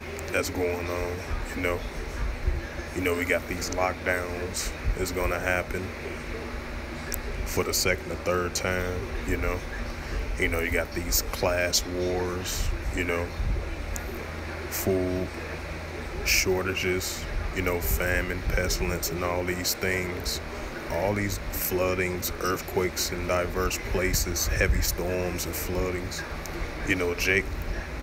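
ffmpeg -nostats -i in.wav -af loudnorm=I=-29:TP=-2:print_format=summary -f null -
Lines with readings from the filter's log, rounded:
Input Integrated:    -28.3 LUFS
Input True Peak:      -7.2 dBTP
Input LRA:             3.2 LU
Input Threshold:     -38.3 LUFS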